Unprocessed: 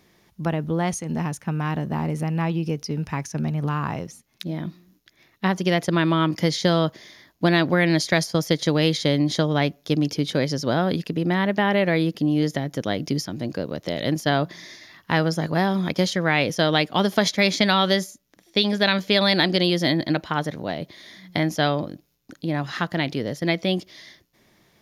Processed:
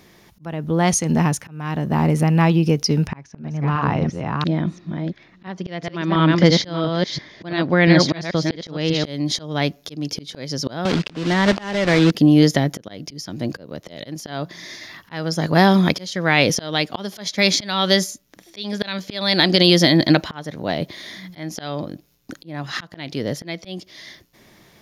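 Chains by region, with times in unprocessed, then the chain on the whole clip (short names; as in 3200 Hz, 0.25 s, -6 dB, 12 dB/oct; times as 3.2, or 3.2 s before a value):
3.07–9.04 reverse delay 0.343 s, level -5 dB + air absorption 160 m
10.85–12.12 block floating point 3-bit + LPF 3900 Hz + three-band squash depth 100%
whole clip: dynamic EQ 5200 Hz, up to +5 dB, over -41 dBFS, Q 1.1; auto swell 0.585 s; maximiser +9.5 dB; gain -1 dB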